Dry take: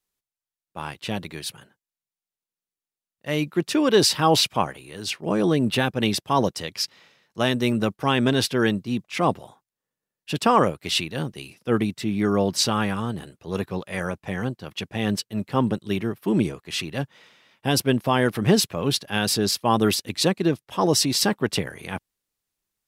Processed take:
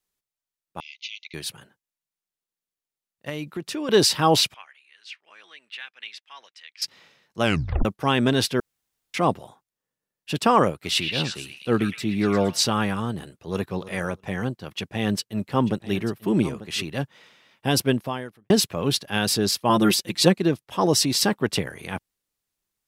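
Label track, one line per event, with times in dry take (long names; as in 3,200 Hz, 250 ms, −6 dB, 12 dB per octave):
0.800000	1.340000	linear-phase brick-wall band-pass 2,000–6,800 Hz
3.290000	3.890000	downward compressor 3 to 1, threshold −29 dBFS
4.540000	6.820000	four-pole ladder band-pass 2,600 Hz, resonance 35%
7.420000	7.420000	tape stop 0.43 s
8.600000	9.140000	fill with room tone
10.710000	12.610000	echo through a band-pass that steps 116 ms, band-pass from 2,100 Hz, each repeat 0.7 octaves, level −1 dB
13.370000	13.850000	delay throw 320 ms, feedback 10%, level −15 dB
14.610000	16.830000	single-tap delay 891 ms −15 dB
17.890000	18.500000	fade out quadratic
19.690000	20.380000	comb filter 5.7 ms, depth 79%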